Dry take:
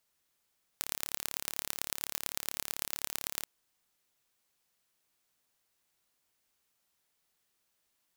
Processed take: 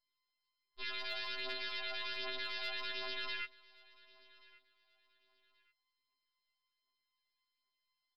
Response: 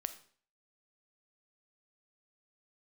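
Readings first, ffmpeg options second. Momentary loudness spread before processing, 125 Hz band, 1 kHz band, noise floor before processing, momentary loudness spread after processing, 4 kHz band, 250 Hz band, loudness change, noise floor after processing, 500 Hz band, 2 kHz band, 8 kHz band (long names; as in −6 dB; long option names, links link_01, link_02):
3 LU, below −10 dB, +1.0 dB, −78 dBFS, 3 LU, +2.5 dB, −3.5 dB, −4.0 dB, below −85 dBFS, +3.0 dB, +5.0 dB, below −30 dB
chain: -af "afwtdn=0.00562,aemphasis=mode=production:type=cd,afftfilt=real='re*lt(hypot(re,im),0.0141)':imag='im*lt(hypot(re,im),0.0141)':win_size=1024:overlap=0.75,equalizer=frequency=190:width_type=o:width=0.49:gain=-4,alimiter=limit=-19dB:level=0:latency=1:release=24,aresample=11025,asoftclip=type=tanh:threshold=-27dB,aresample=44100,afftfilt=real='hypot(re,im)*cos(PI*b)':imag='0':win_size=512:overlap=0.75,aphaser=in_gain=1:out_gain=1:delay=1.5:decay=0.52:speed=1.3:type=triangular,aecho=1:1:1130|2260:0.0668|0.0194,afftfilt=real='re*2.45*eq(mod(b,6),0)':imag='im*2.45*eq(mod(b,6),0)':win_size=2048:overlap=0.75,volume=13dB"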